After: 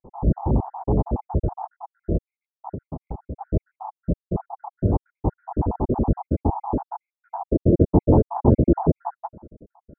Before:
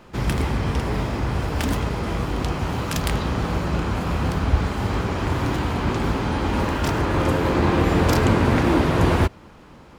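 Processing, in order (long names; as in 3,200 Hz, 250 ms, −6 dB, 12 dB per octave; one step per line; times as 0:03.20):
time-frequency cells dropped at random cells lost 72%
elliptic low-pass filter 870 Hz, stop band 70 dB
0:02.72–0:03.41: downward compressor 6 to 1, threshold −35 dBFS, peak gain reduction 14.5 dB
level +5.5 dB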